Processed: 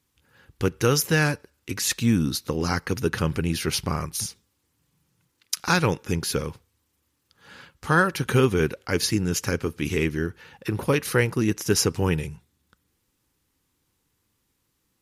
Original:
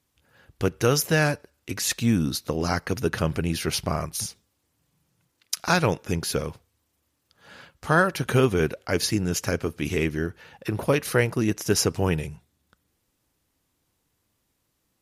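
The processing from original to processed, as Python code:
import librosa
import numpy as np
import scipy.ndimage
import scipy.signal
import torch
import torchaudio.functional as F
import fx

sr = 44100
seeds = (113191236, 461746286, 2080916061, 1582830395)

y = fx.peak_eq(x, sr, hz=650.0, db=-12.5, octaves=0.27)
y = y * 10.0 ** (1.0 / 20.0)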